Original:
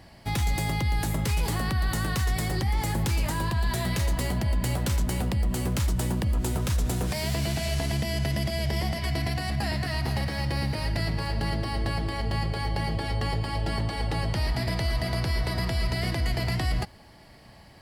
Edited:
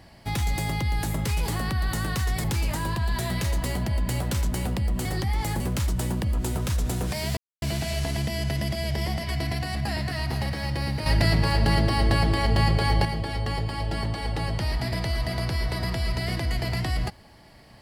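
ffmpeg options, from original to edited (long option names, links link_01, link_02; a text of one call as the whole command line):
ffmpeg -i in.wav -filter_complex "[0:a]asplit=7[link_01][link_02][link_03][link_04][link_05][link_06][link_07];[link_01]atrim=end=2.442[link_08];[link_02]atrim=start=2.988:end=5.602[link_09];[link_03]atrim=start=2.438:end=2.992[link_10];[link_04]atrim=start=5.598:end=7.37,asetpts=PTS-STARTPTS,afade=type=out:start_time=1.768:duration=0.004:curve=hsin,apad=pad_dur=0.25[link_11];[link_05]atrim=start=7.37:end=10.812,asetpts=PTS-STARTPTS,afade=type=in:duration=0.004:curve=hsin[link_12];[link_06]atrim=start=10.808:end=12.802,asetpts=PTS-STARTPTS,volume=7dB[link_13];[link_07]atrim=start=12.798[link_14];[link_08][link_09]acrossfade=duration=0.004:curve1=hsin:curve2=hsin[link_15];[link_15][link_10]acrossfade=duration=0.004:curve1=hsin:curve2=hsin[link_16];[link_11][link_12]concat=n=2:v=0:a=1[link_17];[link_16][link_17]acrossfade=duration=0.004:curve1=hsin:curve2=hsin[link_18];[link_18][link_13]acrossfade=duration=0.004:curve1=hsin:curve2=hsin[link_19];[link_19][link_14]acrossfade=duration=0.004:curve1=hsin:curve2=hsin" out.wav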